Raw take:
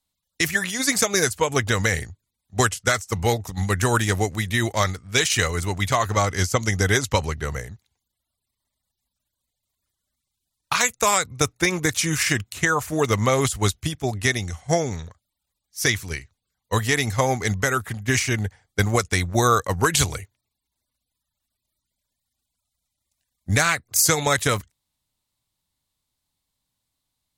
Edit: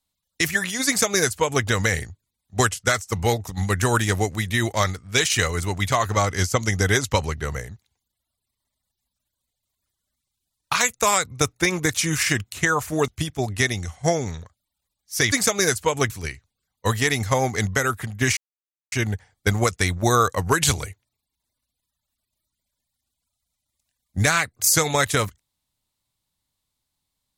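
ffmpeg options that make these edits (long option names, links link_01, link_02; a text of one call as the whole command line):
ffmpeg -i in.wav -filter_complex "[0:a]asplit=5[link_01][link_02][link_03][link_04][link_05];[link_01]atrim=end=13.082[link_06];[link_02]atrim=start=13.728:end=15.972[link_07];[link_03]atrim=start=0.868:end=1.652[link_08];[link_04]atrim=start=15.968:end=18.24,asetpts=PTS-STARTPTS,afade=type=out:start_time=2.268:duration=0.004:curve=hsin,apad=pad_dur=0.55[link_09];[link_05]atrim=start=18.24,asetpts=PTS-STARTPTS,afade=type=in:duration=0.004:curve=hsin[link_10];[link_06][link_07]acrossfade=duration=0.004:curve1=hsin:curve2=hsin[link_11];[link_11][link_08]acrossfade=duration=0.004:curve1=hsin:curve2=hsin[link_12];[link_09][link_10]concat=n=2:v=0:a=1[link_13];[link_12][link_13]acrossfade=duration=0.004:curve1=hsin:curve2=hsin" out.wav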